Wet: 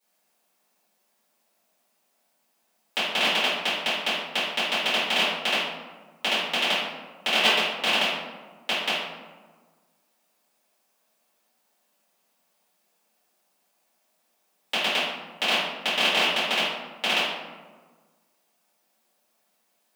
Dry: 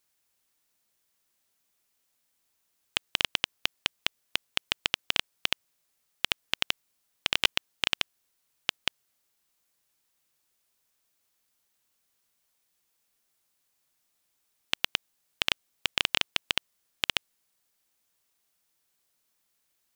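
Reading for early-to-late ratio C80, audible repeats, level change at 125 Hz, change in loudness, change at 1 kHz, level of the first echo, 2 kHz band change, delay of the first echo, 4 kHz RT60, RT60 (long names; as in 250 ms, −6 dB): 3.0 dB, no echo audible, +3.0 dB, +5.5 dB, +12.0 dB, no echo audible, +7.0 dB, no echo audible, 0.70 s, 1.4 s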